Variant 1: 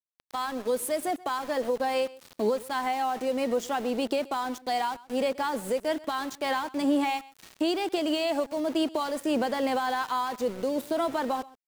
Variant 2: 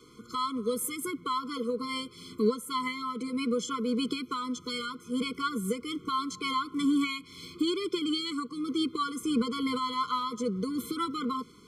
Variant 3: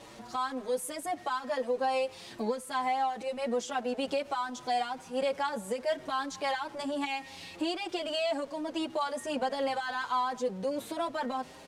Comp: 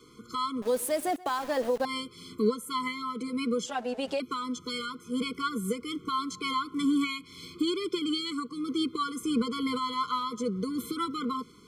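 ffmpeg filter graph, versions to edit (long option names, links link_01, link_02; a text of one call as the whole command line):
ffmpeg -i take0.wav -i take1.wav -i take2.wav -filter_complex "[1:a]asplit=3[link_01][link_02][link_03];[link_01]atrim=end=0.622[link_04];[0:a]atrim=start=0.618:end=1.852[link_05];[link_02]atrim=start=1.848:end=3.662[link_06];[2:a]atrim=start=3.658:end=4.202[link_07];[link_03]atrim=start=4.198[link_08];[link_04][link_05]acrossfade=duration=0.004:curve1=hsin:curve2=hsin[link_09];[link_09][link_06]acrossfade=duration=0.004:curve1=hsin:curve2=hsin[link_10];[link_10][link_07]acrossfade=duration=0.004:curve1=hsin:curve2=hsin[link_11];[link_11][link_08]acrossfade=duration=0.004:curve1=hsin:curve2=hsin" out.wav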